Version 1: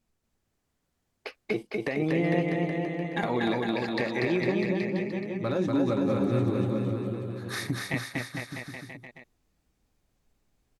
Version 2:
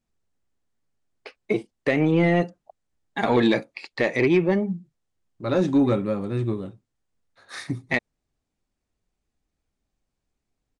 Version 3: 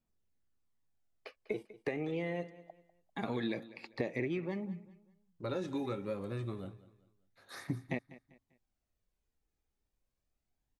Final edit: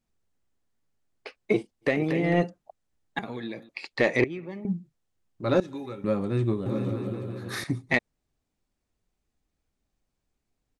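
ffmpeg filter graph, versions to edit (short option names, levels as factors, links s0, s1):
-filter_complex "[0:a]asplit=2[s0][s1];[2:a]asplit=3[s2][s3][s4];[1:a]asplit=6[s5][s6][s7][s8][s9][s10];[s5]atrim=end=2.05[s11];[s0]atrim=start=1.81:end=2.46[s12];[s6]atrim=start=2.22:end=3.192[s13];[s2]atrim=start=3.188:end=3.692[s14];[s7]atrim=start=3.688:end=4.242[s15];[s3]atrim=start=4.238:end=4.652[s16];[s8]atrim=start=4.648:end=5.602[s17];[s4]atrim=start=5.598:end=6.042[s18];[s9]atrim=start=6.038:end=6.662[s19];[s1]atrim=start=6.658:end=7.642[s20];[s10]atrim=start=7.638[s21];[s11][s12]acrossfade=d=0.24:c1=tri:c2=tri[s22];[s22][s13]acrossfade=d=0.24:c1=tri:c2=tri[s23];[s23][s14]acrossfade=d=0.004:c1=hsin:c2=hsin[s24];[s24][s15]acrossfade=d=0.004:c1=hsin:c2=hsin[s25];[s25][s16]acrossfade=d=0.004:c1=hsin:c2=hsin[s26];[s26][s17]acrossfade=d=0.004:c1=hsin:c2=hsin[s27];[s27][s18]acrossfade=d=0.004:c1=hsin:c2=hsin[s28];[s28][s19]acrossfade=d=0.004:c1=hsin:c2=hsin[s29];[s29][s20]acrossfade=d=0.004:c1=hsin:c2=hsin[s30];[s30][s21]acrossfade=d=0.004:c1=hsin:c2=hsin"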